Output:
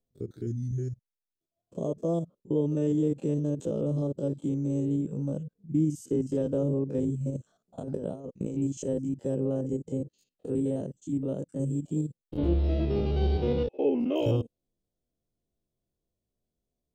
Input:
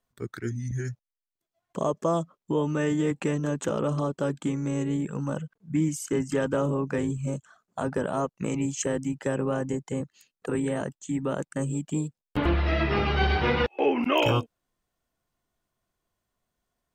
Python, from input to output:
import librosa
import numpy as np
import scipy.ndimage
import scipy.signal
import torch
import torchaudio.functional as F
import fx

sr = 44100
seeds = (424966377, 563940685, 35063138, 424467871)

y = fx.spec_steps(x, sr, hold_ms=50)
y = fx.over_compress(y, sr, threshold_db=-32.0, ratio=-0.5, at=(7.3, 8.57))
y = fx.curve_eq(y, sr, hz=(510.0, 1100.0, 1900.0, 3500.0), db=(0, -20, -24, -9))